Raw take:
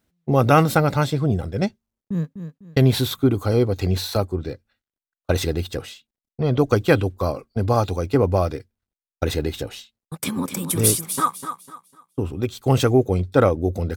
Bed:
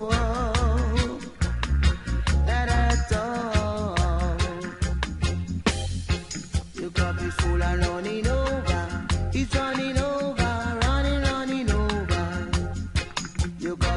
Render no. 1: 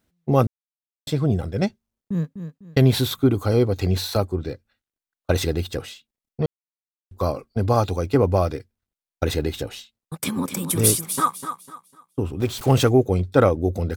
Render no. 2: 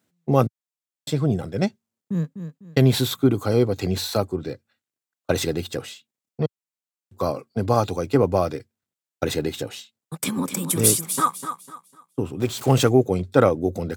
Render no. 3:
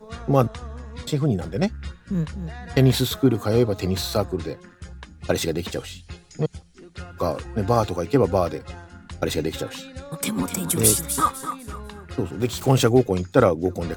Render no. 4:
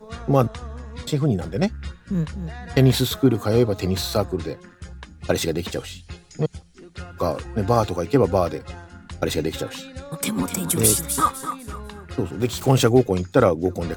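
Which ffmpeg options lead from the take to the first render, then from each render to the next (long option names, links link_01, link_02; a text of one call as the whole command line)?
ffmpeg -i in.wav -filter_complex "[0:a]asettb=1/sr,asplit=3[link_01][link_02][link_03];[link_01]atrim=end=12.404[link_04];[link_02]atrim=start=12.4:end=12.89,asetpts=PTS-STARTPTS,afade=type=in:duration=0.004:curve=qsin,afade=type=out:start_time=0.486:duration=0.004:curve=qsin,aeval=exprs='val(0)+0.5*0.0282*sgn(val(0))':channel_layout=same[link_05];[link_03]atrim=start=12.886[link_06];[link_04][link_05]acrossfade=duration=0.004:curve1=hsin:curve2=qsin[link_07];[link_07][link_06]acrossfade=duration=0.004:curve1=qsin:curve2=hsin,asplit=5[link_08][link_09][link_10][link_11][link_12];[link_08]atrim=end=0.47,asetpts=PTS-STARTPTS,afade=type=out:start_time=0.466:duration=0.004:curve=hsin[link_13];[link_09]atrim=start=0.47:end=1.07,asetpts=PTS-STARTPTS,volume=0[link_14];[link_10]atrim=start=1.07:end=6.46,asetpts=PTS-STARTPTS,afade=type=in:duration=0.004:curve=hsin,afade=type=out:start_time=5.386:duration=0.004:curve=hsin[link_15];[link_11]atrim=start=6.46:end=7.11,asetpts=PTS-STARTPTS,volume=0[link_16];[link_12]atrim=start=7.11,asetpts=PTS-STARTPTS,afade=type=in:duration=0.004:curve=hsin[link_17];[link_13][link_14][link_15][link_16][link_17]concat=n=5:v=0:a=1" out.wav
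ffmpeg -i in.wav -af "highpass=frequency=110:width=0.5412,highpass=frequency=110:width=1.3066,equalizer=frequency=7400:width_type=o:width=0.31:gain=4.5" out.wav
ffmpeg -i in.wav -i bed.wav -filter_complex "[1:a]volume=-13.5dB[link_01];[0:a][link_01]amix=inputs=2:normalize=0" out.wav
ffmpeg -i in.wav -af "volume=1dB,alimiter=limit=-3dB:level=0:latency=1" out.wav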